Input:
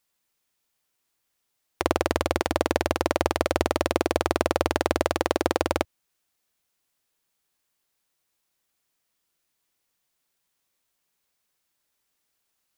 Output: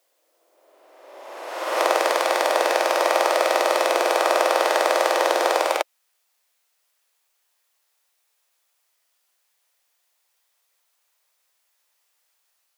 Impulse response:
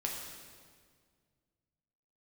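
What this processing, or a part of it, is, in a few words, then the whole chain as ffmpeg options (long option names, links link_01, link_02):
ghost voice: -filter_complex "[0:a]areverse[link_01];[1:a]atrim=start_sample=2205[link_02];[link_01][link_02]afir=irnorm=-1:irlink=0,areverse,highpass=frequency=510:width=0.5412,highpass=frequency=510:width=1.3066,volume=4.5dB"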